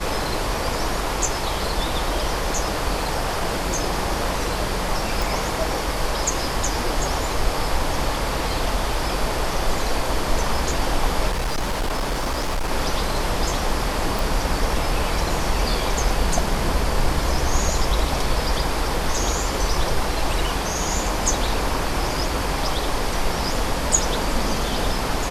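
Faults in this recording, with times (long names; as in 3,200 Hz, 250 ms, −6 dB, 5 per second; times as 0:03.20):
0:05.22: click
0:11.30–0:12.71: clipping −19.5 dBFS
0:14.19: click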